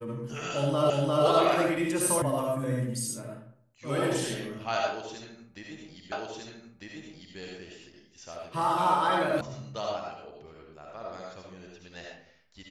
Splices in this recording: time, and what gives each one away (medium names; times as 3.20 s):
0.90 s: repeat of the last 0.35 s
2.22 s: sound stops dead
6.12 s: repeat of the last 1.25 s
9.41 s: sound stops dead